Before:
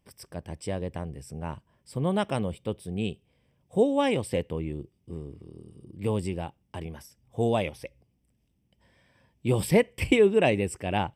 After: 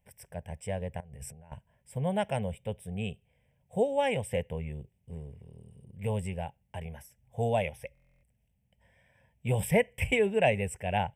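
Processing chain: 1.00–1.52 s: compressor with a negative ratio -46 dBFS, ratio -1; static phaser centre 1.2 kHz, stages 6; buffer glitch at 7.93 s, samples 1024, times 12

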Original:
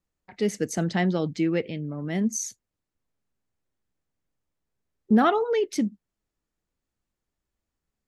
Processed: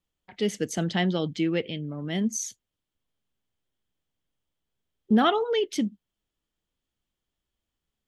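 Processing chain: peaking EQ 3.2 kHz +12 dB 0.37 oct; trim -1.5 dB

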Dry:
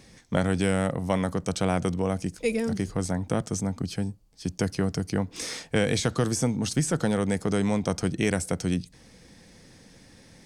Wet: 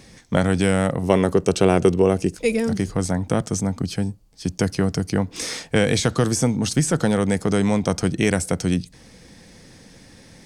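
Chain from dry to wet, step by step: 1.03–2.36 s: small resonant body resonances 390/2700 Hz, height 12 dB, ringing for 30 ms; trim +5.5 dB

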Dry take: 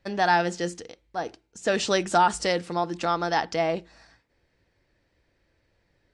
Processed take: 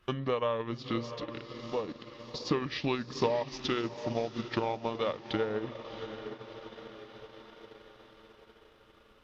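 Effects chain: compression 2:1, threshold -38 dBFS, peak gain reduction 12.5 dB; on a send: echo that smears into a reverb 465 ms, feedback 49%, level -9 dB; on the sum: wide varispeed 0.664×; transient shaper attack +6 dB, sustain -6 dB; tape noise reduction on one side only encoder only

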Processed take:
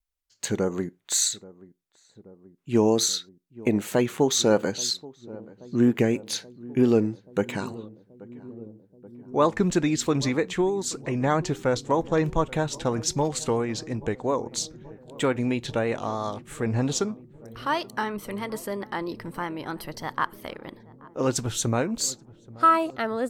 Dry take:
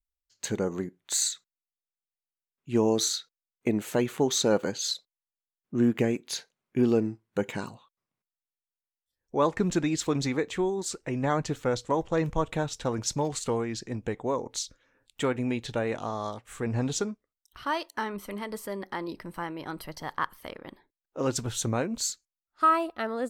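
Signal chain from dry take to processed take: vibrato 3.1 Hz 43 cents; filtered feedback delay 830 ms, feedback 81%, low-pass 890 Hz, level -20 dB; trim +3.5 dB

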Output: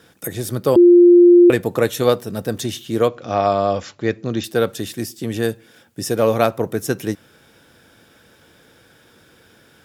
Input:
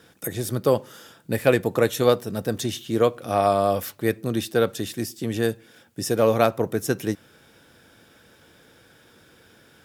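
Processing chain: 0.76–1.50 s: bleep 350 Hz -7.5 dBFS; 3.08–4.44 s: brick-wall FIR low-pass 7.5 kHz; trim +2.5 dB

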